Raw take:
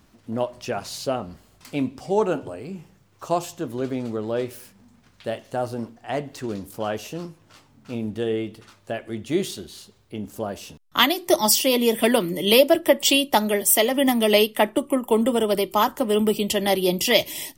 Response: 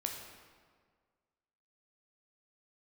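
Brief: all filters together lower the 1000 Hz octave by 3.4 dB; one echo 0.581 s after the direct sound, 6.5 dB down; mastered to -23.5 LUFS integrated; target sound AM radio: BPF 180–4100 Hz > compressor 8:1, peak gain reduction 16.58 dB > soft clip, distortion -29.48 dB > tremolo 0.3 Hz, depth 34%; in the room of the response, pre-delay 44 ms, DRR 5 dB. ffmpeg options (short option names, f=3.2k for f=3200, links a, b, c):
-filter_complex "[0:a]equalizer=f=1k:t=o:g=-4.5,aecho=1:1:581:0.473,asplit=2[a][b];[1:a]atrim=start_sample=2205,adelay=44[c];[b][c]afir=irnorm=-1:irlink=0,volume=-6dB[d];[a][d]amix=inputs=2:normalize=0,highpass=180,lowpass=4.1k,acompressor=threshold=-27dB:ratio=8,asoftclip=threshold=-16dB,tremolo=f=0.3:d=0.34,volume=10.5dB"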